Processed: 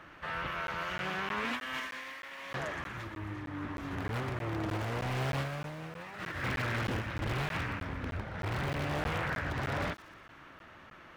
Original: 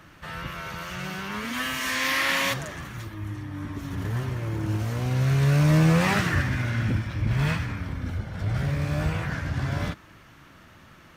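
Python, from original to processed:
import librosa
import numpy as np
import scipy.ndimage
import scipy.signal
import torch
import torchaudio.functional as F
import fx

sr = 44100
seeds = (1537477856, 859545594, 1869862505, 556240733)

p1 = (np.mod(10.0 ** (21.5 / 20.0) * x + 1.0, 2.0) - 1.0) / 10.0 ** (21.5 / 20.0)
p2 = x + (p1 * 10.0 ** (-6.5 / 20.0))
p3 = fx.bass_treble(p2, sr, bass_db=-15, treble_db=-13)
p4 = fx.over_compress(p3, sr, threshold_db=-31.0, ratio=-0.5)
p5 = fx.low_shelf(p4, sr, hz=140.0, db=8.0)
p6 = fx.echo_wet_highpass(p5, sr, ms=119, feedback_pct=55, hz=4800.0, wet_db=-10)
p7 = fx.buffer_crackle(p6, sr, first_s=0.67, period_s=0.31, block=512, kind='zero')
p8 = fx.doppler_dist(p7, sr, depth_ms=0.52)
y = p8 * 10.0 ** (-4.5 / 20.0)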